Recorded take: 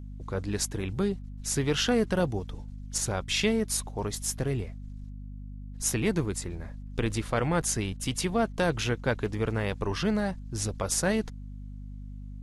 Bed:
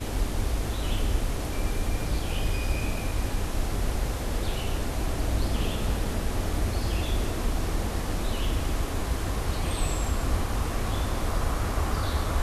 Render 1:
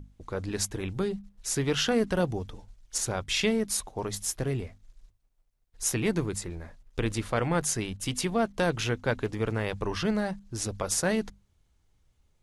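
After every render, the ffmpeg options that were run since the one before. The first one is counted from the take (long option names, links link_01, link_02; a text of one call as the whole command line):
ffmpeg -i in.wav -af "bandreject=frequency=50:width_type=h:width=6,bandreject=frequency=100:width_type=h:width=6,bandreject=frequency=150:width_type=h:width=6,bandreject=frequency=200:width_type=h:width=6,bandreject=frequency=250:width_type=h:width=6" out.wav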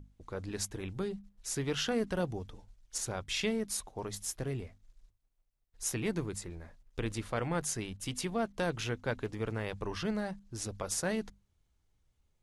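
ffmpeg -i in.wav -af "volume=-6.5dB" out.wav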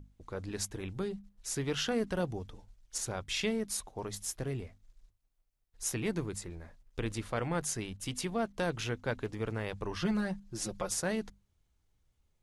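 ffmpeg -i in.wav -filter_complex "[0:a]asettb=1/sr,asplit=3[link_01][link_02][link_03];[link_01]atrim=end=10.014[link_04];[link_02]atrim=start=10.01:end=10.9,asetpts=PTS-STARTPTS,afade=type=in:duration=0.004:curve=qsin,afade=type=out:start_time=0.886:duration=0.004:curve=qsin,aecho=1:1:5.6:0.82,atrim=end_sample=39249[link_05];[link_03]atrim=start=10.896[link_06];[link_04][link_05]acrossfade=duration=0.004:curve1=hsin:curve2=qsin[link_07];[link_07][link_06]acrossfade=duration=0.004:curve1=qsin:curve2=hsin" out.wav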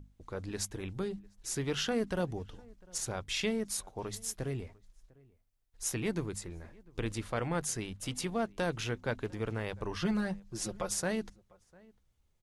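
ffmpeg -i in.wav -filter_complex "[0:a]asplit=2[link_01][link_02];[link_02]adelay=699.7,volume=-25dB,highshelf=frequency=4000:gain=-15.7[link_03];[link_01][link_03]amix=inputs=2:normalize=0" out.wav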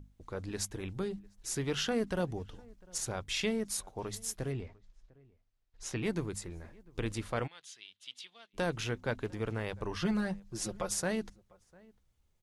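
ffmpeg -i in.wav -filter_complex "[0:a]asettb=1/sr,asplit=3[link_01][link_02][link_03];[link_01]atrim=end=4.524[link_04];[link_02]atrim=start=4.52:end=6.03,asetpts=PTS-STARTPTS,afade=type=in:duration=0.004:curve=qsin,afade=type=out:start_time=1.506:duration=0.004:curve=qsin,lowpass=5100[link_05];[link_03]atrim=start=6.026[link_06];[link_04][link_05]acrossfade=duration=0.004:curve1=hsin:curve2=qsin[link_07];[link_07][link_06]acrossfade=duration=0.004:curve1=qsin:curve2=hsin,asplit=3[link_08][link_09][link_10];[link_08]afade=type=out:start_time=7.46:duration=0.02[link_11];[link_09]bandpass=frequency=3400:width_type=q:width=3.6,afade=type=in:start_time=7.46:duration=0.02,afade=type=out:start_time=8.53:duration=0.02[link_12];[link_10]afade=type=in:start_time=8.53:duration=0.02[link_13];[link_11][link_12][link_13]amix=inputs=3:normalize=0" out.wav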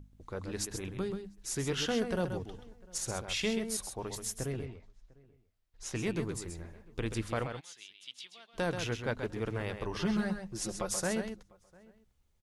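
ffmpeg -i in.wav -af "aecho=1:1:131:0.422" out.wav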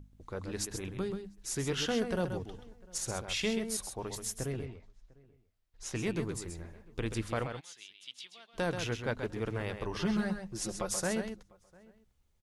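ffmpeg -i in.wav -af anull out.wav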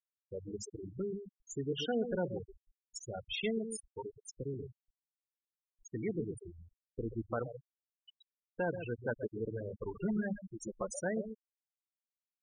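ffmpeg -i in.wav -af "afftfilt=real='re*gte(hypot(re,im),0.0501)':imag='im*gte(hypot(re,im),0.0501)':win_size=1024:overlap=0.75,lowshelf=frequency=160:gain=-8" out.wav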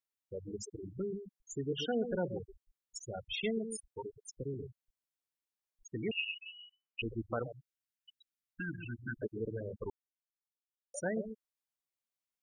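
ffmpeg -i in.wav -filter_complex "[0:a]asettb=1/sr,asplit=3[link_01][link_02][link_03];[link_01]atrim=end=6.114[link_04];[link_02]atrim=start=6.11:end=7.02,asetpts=PTS-STARTPTS,afade=type=in:duration=0.004:curve=qsin,afade=type=out:start_time=0.906:duration=0.004:curve=qsin,lowpass=frequency=2600:width_type=q:width=0.5098,lowpass=frequency=2600:width_type=q:width=0.6013,lowpass=frequency=2600:width_type=q:width=0.9,lowpass=frequency=2600:width_type=q:width=2.563,afreqshift=-3000[link_05];[link_03]atrim=start=7.016[link_06];[link_04][link_05]acrossfade=duration=0.004:curve1=hsin:curve2=qsin[link_07];[link_07][link_06]acrossfade=duration=0.004:curve1=qsin:curve2=hsin,asettb=1/sr,asplit=3[link_08][link_09][link_10];[link_08]atrim=end=7.524[link_11];[link_09]atrim=start=7.52:end=9.22,asetpts=PTS-STARTPTS,afade=type=in:duration=0.004:curve=qsin,afade=type=out:start_time=1.696:duration=0.004:curve=qsin,asuperstop=centerf=650:order=20:qfactor=0.7[link_12];[link_10]atrim=start=9.216[link_13];[link_11][link_12]acrossfade=duration=0.004:curve1=hsin:curve2=qsin[link_14];[link_14][link_13]acrossfade=duration=0.004:curve1=qsin:curve2=hsin,asplit=3[link_15][link_16][link_17];[link_15]atrim=end=9.9,asetpts=PTS-STARTPTS,afade=type=out:start_time=9.896:duration=0.004:curve=hsin[link_18];[link_16]atrim=start=9.9:end=10.94,asetpts=PTS-STARTPTS,volume=0[link_19];[link_17]atrim=start=10.94,asetpts=PTS-STARTPTS,afade=type=in:duration=0.004:curve=hsin[link_20];[link_18][link_19][link_20]concat=n=3:v=0:a=1" out.wav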